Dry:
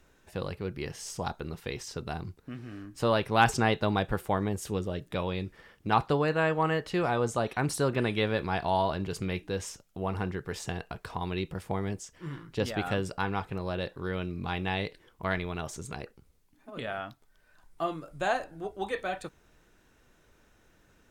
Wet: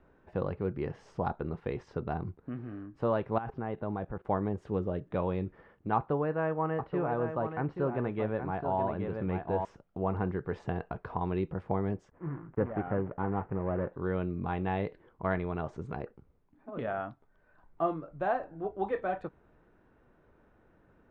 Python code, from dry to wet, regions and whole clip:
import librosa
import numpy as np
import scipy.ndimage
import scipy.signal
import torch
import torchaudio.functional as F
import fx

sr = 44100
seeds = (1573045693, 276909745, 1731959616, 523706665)

y = fx.chain(x, sr, fx.air_absorb(metres=260.0),
    fx.level_steps(step_db=18), at=(3.38, 4.25))
y = fx.chain(y, sr, fx.lowpass(hz=3200.0, slope=12),
    fx.echo_single(ms=827, db=-8.0), at=(5.96, 9.65))
y = fx.chain(y, sr, fx.dead_time(dead_ms=0.22),
    fx.lowpass(hz=2100.0, slope=24), at=(12.1, 13.93))
y = scipy.signal.sosfilt(scipy.signal.butter(2, 1200.0, 'lowpass', fs=sr, output='sos'), y)
y = fx.low_shelf(y, sr, hz=63.0, db=-7.0)
y = fx.rider(y, sr, range_db=3, speed_s=0.5)